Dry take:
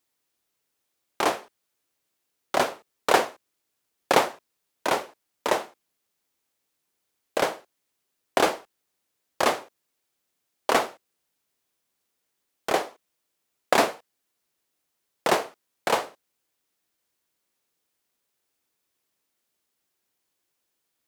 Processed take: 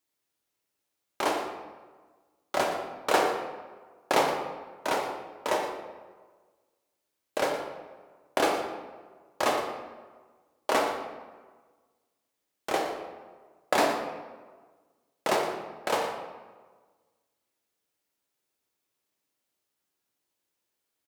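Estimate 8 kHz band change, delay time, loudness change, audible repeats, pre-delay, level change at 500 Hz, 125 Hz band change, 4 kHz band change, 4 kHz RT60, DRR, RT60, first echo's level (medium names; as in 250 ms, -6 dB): -4.0 dB, 117 ms, -4.0 dB, 1, 3 ms, -2.0 dB, -3.0 dB, -3.5 dB, 0.85 s, 1.0 dB, 1.4 s, -12.5 dB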